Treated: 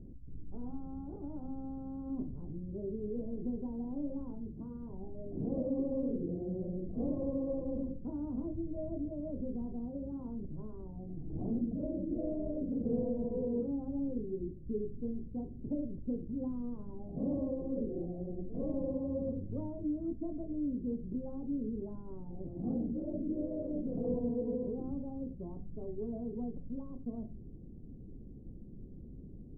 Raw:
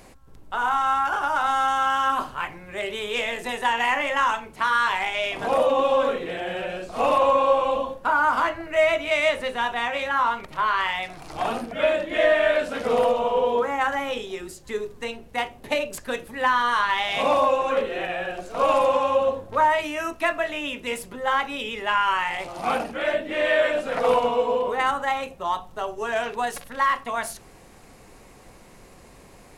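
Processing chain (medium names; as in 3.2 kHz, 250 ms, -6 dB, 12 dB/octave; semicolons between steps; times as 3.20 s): inverse Chebyshev low-pass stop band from 1.8 kHz, stop band 80 dB; in parallel at +1.5 dB: peak limiter -32 dBFS, peak gain reduction 9 dB; on the sum: trim -3 dB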